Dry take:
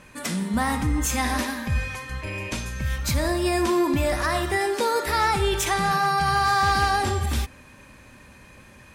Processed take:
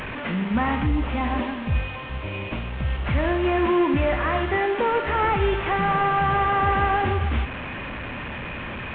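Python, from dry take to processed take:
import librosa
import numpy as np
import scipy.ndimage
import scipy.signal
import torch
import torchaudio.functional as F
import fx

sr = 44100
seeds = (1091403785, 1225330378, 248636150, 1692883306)

y = fx.delta_mod(x, sr, bps=16000, step_db=-27.5)
y = fx.peak_eq(y, sr, hz=1700.0, db=-7.0, octaves=0.84, at=(0.86, 3.06))
y = y * 10.0 ** (1.5 / 20.0)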